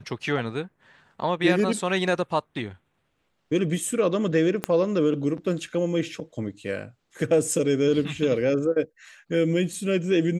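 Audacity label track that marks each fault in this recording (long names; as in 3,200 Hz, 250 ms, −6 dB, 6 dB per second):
4.640000	4.640000	click −10 dBFS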